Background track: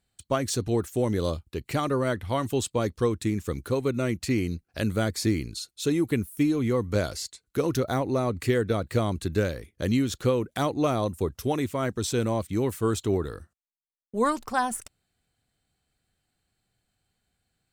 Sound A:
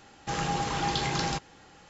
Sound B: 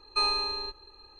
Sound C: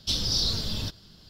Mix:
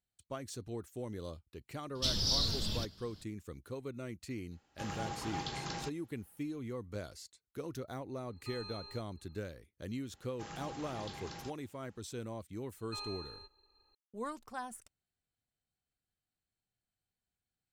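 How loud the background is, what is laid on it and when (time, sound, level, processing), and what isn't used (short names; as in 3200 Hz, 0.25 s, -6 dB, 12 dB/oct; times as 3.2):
background track -16.5 dB
1.95 add C -5.5 dB
4.51 add A -10.5 dB + upward expander, over -44 dBFS
8.3 add B -17 dB + limiter -23.5 dBFS
10.12 add A -17.5 dB + vocal rider within 3 dB 2 s
12.76 add B -17.5 dB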